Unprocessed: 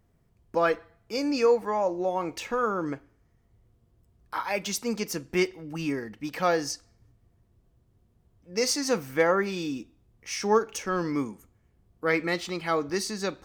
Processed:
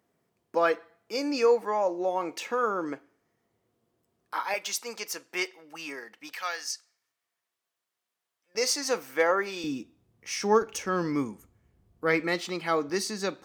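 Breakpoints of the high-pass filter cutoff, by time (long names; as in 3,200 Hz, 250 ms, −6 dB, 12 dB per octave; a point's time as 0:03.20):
280 Hz
from 0:04.54 670 Hz
from 0:06.34 1,500 Hz
from 0:08.55 420 Hz
from 0:09.64 110 Hz
from 0:10.62 42 Hz
from 0:12.21 170 Hz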